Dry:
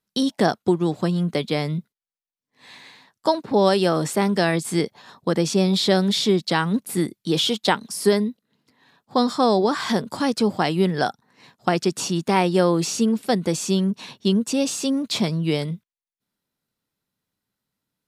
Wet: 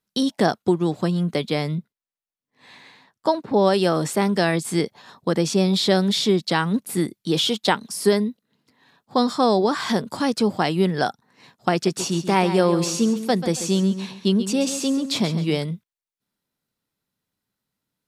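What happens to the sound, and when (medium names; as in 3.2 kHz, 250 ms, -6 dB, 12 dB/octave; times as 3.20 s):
1.75–3.74 s: treble shelf 3.3 kHz -6.5 dB
11.73–15.59 s: feedback delay 137 ms, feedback 30%, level -11 dB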